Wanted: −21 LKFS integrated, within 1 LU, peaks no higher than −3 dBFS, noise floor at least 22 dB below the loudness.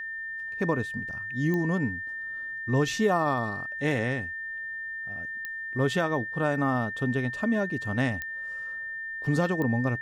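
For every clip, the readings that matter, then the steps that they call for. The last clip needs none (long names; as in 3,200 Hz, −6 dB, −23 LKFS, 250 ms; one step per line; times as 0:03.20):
number of clicks 4; interfering tone 1,800 Hz; level of the tone −33 dBFS; integrated loudness −28.5 LKFS; sample peak −13.5 dBFS; target loudness −21.0 LKFS
→ click removal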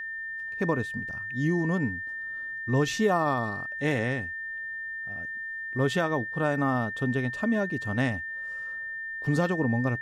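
number of clicks 0; interfering tone 1,800 Hz; level of the tone −33 dBFS
→ notch filter 1,800 Hz, Q 30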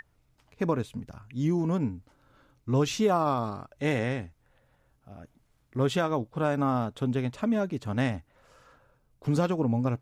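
interfering tone none found; integrated loudness −29.0 LKFS; sample peak −13.5 dBFS; target loudness −21.0 LKFS
→ level +8 dB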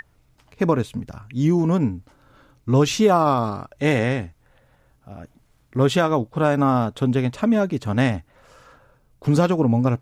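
integrated loudness −21.0 LKFS; sample peak −5.5 dBFS; background noise floor −61 dBFS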